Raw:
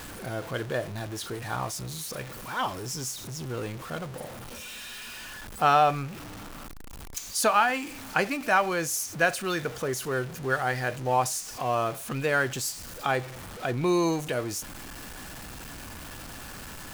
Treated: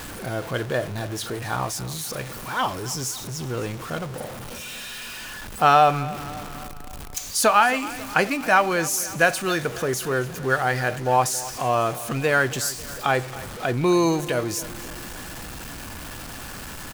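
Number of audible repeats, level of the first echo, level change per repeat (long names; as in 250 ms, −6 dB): 4, −17.5 dB, −5.0 dB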